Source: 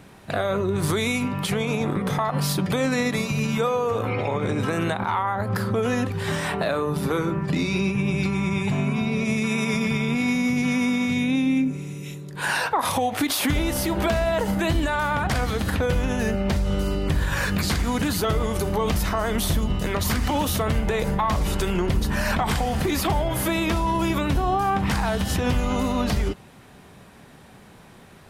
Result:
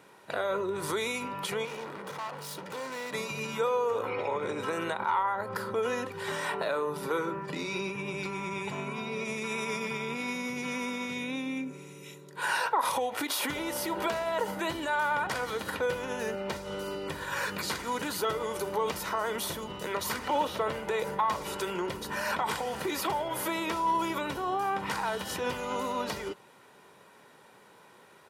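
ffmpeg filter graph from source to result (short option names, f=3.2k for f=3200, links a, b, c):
-filter_complex "[0:a]asettb=1/sr,asplit=3[a][b][c];[a]atrim=end=1.654[d];[b]atrim=start=1.65:end=3.13,asetpts=PTS-STARTPTS,afade=t=in:d=0.004:c=qsin,afade=t=out:st=1.476:d=0.004:c=qsin,bandreject=f=60:t=h:w=6,bandreject=f=120:t=h:w=6,bandreject=f=180:t=h:w=6,bandreject=f=240:t=h:w=6,bandreject=f=300:t=h:w=6,bandreject=f=360:t=h:w=6,bandreject=f=420:t=h:w=6,bandreject=f=480:t=h:w=6,bandreject=f=540:t=h:w=6,bandreject=f=600:t=h:w=6,asoftclip=type=hard:threshold=-29.5dB[e];[c]atrim=start=3.126[f];[d][e]acrossfade=d=0.004:c1=hsin:c2=qsin[g];[g][f]acrossfade=d=0.004:c1=qsin:c2=hsin,asettb=1/sr,asplit=3[h][i][j];[h]atrim=end=20.194[k];[i]atrim=start=20.19:end=20.79,asetpts=PTS-STARTPTS,afade=t=in:d=0.004:c=qsin,afade=t=out:st=0.596:d=0.004:c=qsin,acrossover=split=4500[l][m];[m]acompressor=threshold=-45dB:ratio=4:attack=1:release=60[n];[l][n]amix=inputs=2:normalize=0,equalizer=f=580:t=o:w=1:g=3.5[o];[j]atrim=start=20.786[p];[k][o]acrossfade=d=0.004:c1=hsin:c2=qsin[q];[q][p]acrossfade=d=0.004:c1=qsin:c2=hsin,highpass=250,equalizer=f=1.1k:w=1.5:g=4,aecho=1:1:2.1:0.4,volume=-7.5dB"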